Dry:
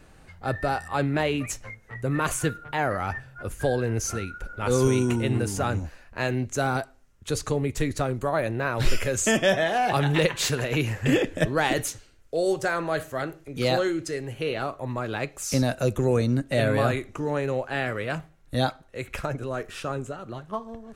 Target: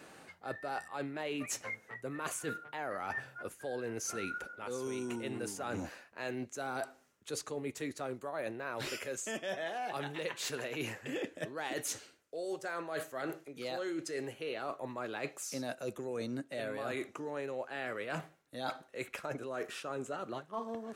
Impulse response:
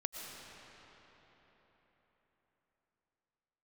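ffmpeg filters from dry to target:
-af "highpass=260,areverse,acompressor=threshold=0.0126:ratio=12,areverse,volume=1.33"

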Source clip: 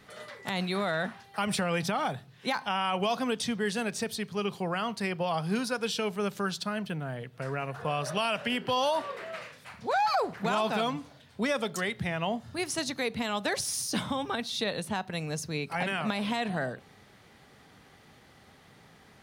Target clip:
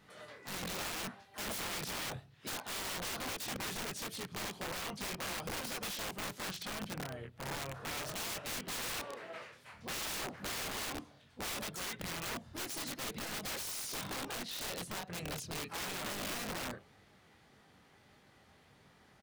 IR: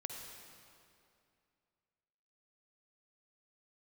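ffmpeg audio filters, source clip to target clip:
-filter_complex "[0:a]flanger=delay=20:depth=5:speed=1.7,asplit=4[s0][s1][s2][s3];[s1]asetrate=22050,aresample=44100,atempo=2,volume=0.2[s4];[s2]asetrate=33038,aresample=44100,atempo=1.33484,volume=0.398[s5];[s3]asetrate=55563,aresample=44100,atempo=0.793701,volume=0.2[s6];[s0][s4][s5][s6]amix=inputs=4:normalize=0,aeval=exprs='(mod(29.9*val(0)+1,2)-1)/29.9':c=same,volume=0.562"

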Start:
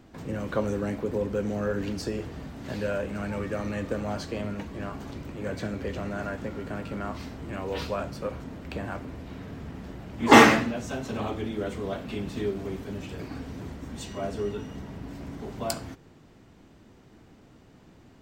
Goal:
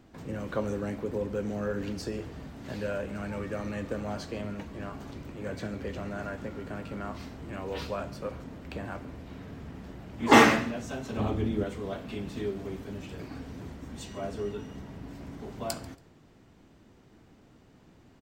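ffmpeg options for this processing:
-filter_complex "[0:a]asettb=1/sr,asplit=3[s0][s1][s2];[s0]atrim=end=11.174[s3];[s1]atrim=start=11.17:end=11.64,asetpts=PTS-STARTPTS,afade=t=in:d=0.004:c=qsin,afade=t=out:st=0.466:d=0.004:c=qsin,lowshelf=f=340:g=10[s4];[s2]atrim=start=11.636[s5];[s3][s4]acrossfade=d=0.004:c1=hsin:c2=qsin[s6];[s6][s5]acrossfade=d=0.004:c1=qsin:c2=hsin,aecho=1:1:140|280:0.0891|0.0232,volume=0.668"

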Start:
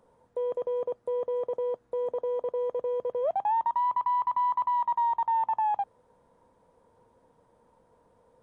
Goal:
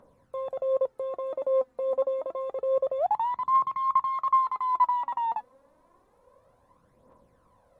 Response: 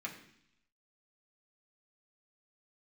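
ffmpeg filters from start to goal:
-af "aphaser=in_gain=1:out_gain=1:delay=4.6:decay=0.57:speed=0.26:type=triangular,asetrate=47628,aresample=44100"

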